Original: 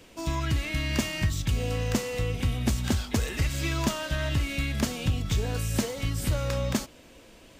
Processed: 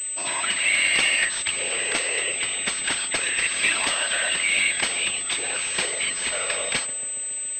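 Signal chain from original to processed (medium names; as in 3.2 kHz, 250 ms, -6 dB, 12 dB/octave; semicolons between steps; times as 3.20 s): high-pass 690 Hz 12 dB/octave; resonant high shelf 1.6 kHz +8 dB, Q 1.5; whisper effect; filtered feedback delay 140 ms, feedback 79%, low-pass 1.3 kHz, level -13.5 dB; class-D stage that switches slowly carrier 8.1 kHz; trim +5.5 dB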